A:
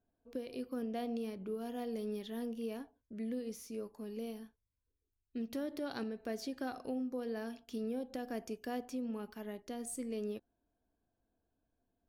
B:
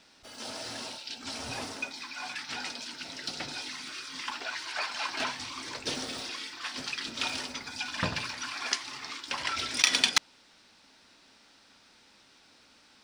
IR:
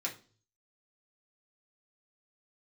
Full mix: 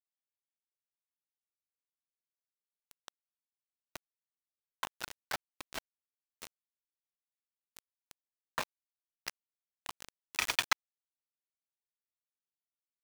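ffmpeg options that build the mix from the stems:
-filter_complex "[0:a]asubboost=boost=12:cutoff=150,acompressor=threshold=0.0141:ratio=2.5,volume=0.282,asplit=2[s0][s1];[1:a]highpass=760,acrusher=bits=9:mix=0:aa=0.000001,adelay=550,volume=1.41[s2];[s1]apad=whole_len=598906[s3];[s2][s3]sidechaincompress=threshold=0.00224:ratio=12:attack=7.6:release=116[s4];[s0][s4]amix=inputs=2:normalize=0,firequalizer=gain_entry='entry(110,0);entry(180,5);entry(3600,-12)':delay=0.05:min_phase=1,aeval=exprs='val(0)*gte(abs(val(0)),0.0376)':c=same"

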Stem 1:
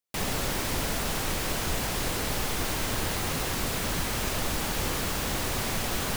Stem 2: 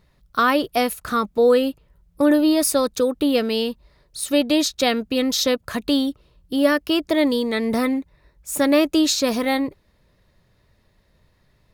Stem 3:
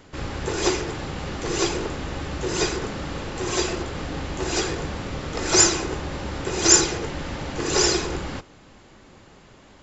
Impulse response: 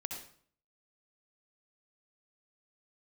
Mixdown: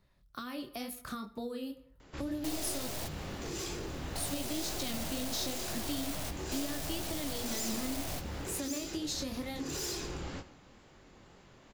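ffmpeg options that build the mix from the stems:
-filter_complex "[0:a]highpass=f=650:t=q:w=4.9,aeval=exprs='(tanh(56.2*val(0)+0.75)-tanh(0.75))/56.2':c=same,adelay=2300,volume=0.891,asplit=2[s0][s1];[s1]volume=0.141[s2];[1:a]bandreject=f=460:w=13,volume=0.447,asplit=3[s3][s4][s5];[s3]atrim=end=2.88,asetpts=PTS-STARTPTS,afade=t=out:st=2.876:d=0.004:c=hsin[s6];[s4]atrim=start=2.88:end=4.13,asetpts=PTS-STARTPTS,volume=0[s7];[s5]atrim=start=4.13,asetpts=PTS-STARTPTS,afade=t=in:d=0.004:c=hsin[s8];[s6][s7][s8]concat=n=3:v=0:a=1,asplit=3[s9][s10][s11];[s10]volume=0.0841[s12];[2:a]volume=16.8,asoftclip=hard,volume=0.0596,adelay=2000,volume=0.422,asplit=2[s13][s14];[s14]volume=0.251[s15];[s11]apad=whole_len=373433[s16];[s0][s16]sidechaingate=range=0.0224:threshold=0.002:ratio=16:detection=peak[s17];[s9][s13]amix=inputs=2:normalize=0,flanger=delay=20:depth=7.2:speed=2.1,acompressor=threshold=0.0224:ratio=6,volume=1[s18];[3:a]atrim=start_sample=2205[s19];[s2][s12][s15]amix=inputs=3:normalize=0[s20];[s20][s19]afir=irnorm=-1:irlink=0[s21];[s17][s18][s21]amix=inputs=3:normalize=0,acrossover=split=310|3000[s22][s23][s24];[s23]acompressor=threshold=0.00708:ratio=6[s25];[s22][s25][s24]amix=inputs=3:normalize=0"

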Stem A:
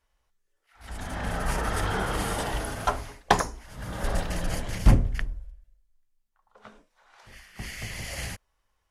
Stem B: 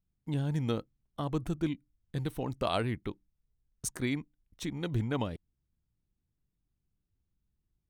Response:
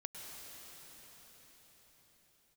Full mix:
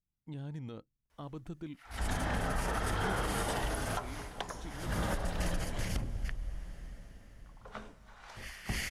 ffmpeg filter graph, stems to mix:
-filter_complex "[0:a]acompressor=threshold=0.0355:ratio=12,adelay=1100,volume=1.26,asplit=2[s0][s1];[s1]volume=0.299[s2];[1:a]highshelf=f=10000:g=-12,alimiter=limit=0.0631:level=0:latency=1:release=100,volume=0.355[s3];[2:a]atrim=start_sample=2205[s4];[s2][s4]afir=irnorm=-1:irlink=0[s5];[s0][s3][s5]amix=inputs=3:normalize=0,alimiter=limit=0.0708:level=0:latency=1:release=434"

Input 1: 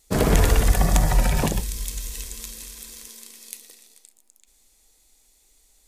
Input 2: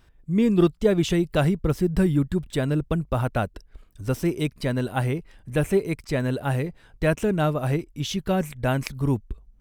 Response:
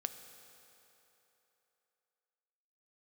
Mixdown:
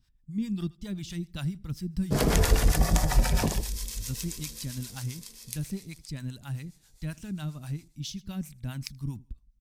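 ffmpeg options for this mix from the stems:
-filter_complex "[0:a]adelay=2000,volume=0.794,asplit=2[s0][s1];[s1]volume=0.266[s2];[1:a]firequalizer=gain_entry='entry(210,0);entry(440,-20);entry(880,-11);entry(4100,1)':delay=0.05:min_phase=1,volume=0.473,asplit=2[s3][s4];[s4]volume=0.0708[s5];[s2][s5]amix=inputs=2:normalize=0,aecho=0:1:80|160|240|320:1|0.27|0.0729|0.0197[s6];[s0][s3][s6]amix=inputs=3:normalize=0,equalizer=f=5100:t=o:w=0.57:g=5.5,acrossover=split=580[s7][s8];[s7]aeval=exprs='val(0)*(1-0.7/2+0.7/2*cos(2*PI*7.5*n/s))':c=same[s9];[s8]aeval=exprs='val(0)*(1-0.7/2-0.7/2*cos(2*PI*7.5*n/s))':c=same[s10];[s9][s10]amix=inputs=2:normalize=0"

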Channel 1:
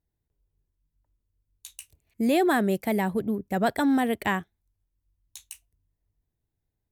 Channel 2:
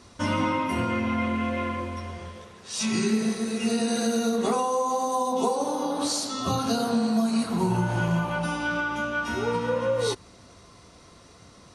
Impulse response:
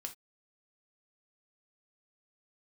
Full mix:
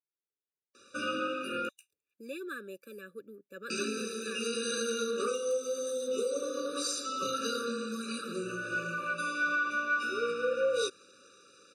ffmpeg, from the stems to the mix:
-filter_complex "[0:a]volume=0.299[s0];[1:a]adelay=750,volume=1,asplit=3[s1][s2][s3];[s1]atrim=end=1.69,asetpts=PTS-STARTPTS,afade=t=out:st=1.686:d=0.004:c=hsin[s4];[s2]atrim=start=1.69:end=3.7,asetpts=PTS-STARTPTS,volume=0[s5];[s3]atrim=start=3.7,asetpts=PTS-STARTPTS,afade=t=in:d=0.004:c=hsin[s6];[s4][s5][s6]concat=n=3:v=0:a=1[s7];[s0][s7]amix=inputs=2:normalize=0,highpass=540,highshelf=f=7000:g=-5.5,afftfilt=real='re*eq(mod(floor(b*sr/1024/580),2),0)':imag='im*eq(mod(floor(b*sr/1024/580),2),0)':win_size=1024:overlap=0.75"

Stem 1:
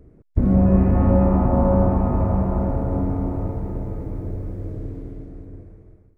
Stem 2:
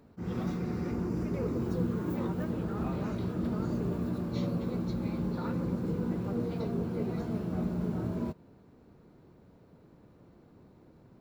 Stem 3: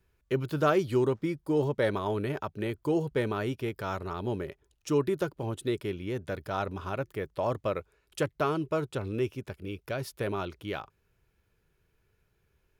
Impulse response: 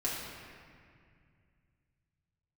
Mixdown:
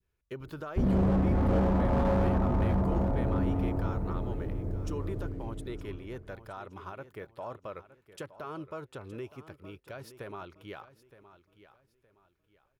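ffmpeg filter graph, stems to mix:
-filter_complex "[0:a]asoftclip=type=hard:threshold=0.141,adelay=400,volume=0.531[s0];[2:a]adynamicequalizer=threshold=0.00708:dfrequency=1100:dqfactor=0.75:tfrequency=1100:tqfactor=0.75:attack=5:release=100:ratio=0.375:range=3.5:mode=boostabove:tftype=bell,alimiter=limit=0.0891:level=0:latency=1:release=158,volume=0.335,asplit=2[s1][s2];[s2]volume=0.178,aecho=0:1:917|1834|2751|3668:1|0.29|0.0841|0.0244[s3];[s0][s1][s3]amix=inputs=3:normalize=0"

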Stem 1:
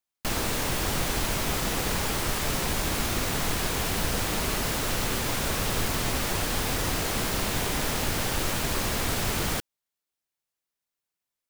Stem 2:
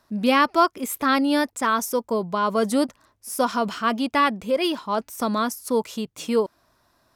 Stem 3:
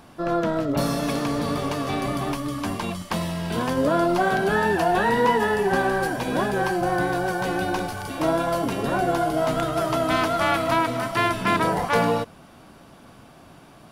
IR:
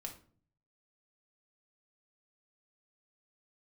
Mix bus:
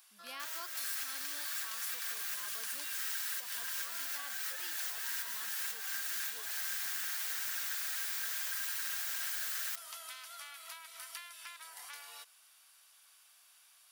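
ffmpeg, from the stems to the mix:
-filter_complex "[0:a]equalizer=f=100:t=o:w=0.67:g=3,equalizer=f=250:t=o:w=0.67:g=5,equalizer=f=10000:t=o:w=0.67:g=-6,aeval=exprs='val(0)*sin(2*PI*1600*n/s)':c=same,aecho=1:1:6.3:0.73,adelay=150,volume=1.19[s0];[1:a]volume=0.211,asplit=2[s1][s2];[2:a]highpass=1200,acompressor=threshold=0.0251:ratio=12,volume=0.841[s3];[s2]apad=whole_len=513799[s4];[s0][s4]sidechaincompress=threshold=0.00891:ratio=12:attack=42:release=350[s5];[s5][s1][s3]amix=inputs=3:normalize=0,aderivative,acompressor=threshold=0.0178:ratio=4"

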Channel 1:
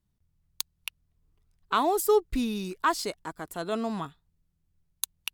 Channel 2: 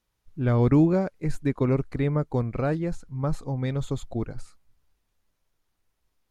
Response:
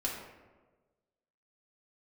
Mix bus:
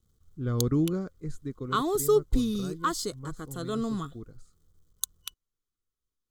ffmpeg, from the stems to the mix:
-filter_complex "[0:a]lowshelf=f=130:g=10.5,acrusher=bits=11:mix=0:aa=0.000001,volume=0.891[s0];[1:a]volume=0.473,afade=t=out:st=1.04:d=0.62:silence=0.446684[s1];[s0][s1]amix=inputs=2:normalize=0,superequalizer=8b=0.316:9b=0.282:11b=0.447:12b=0.251:15b=1.58"

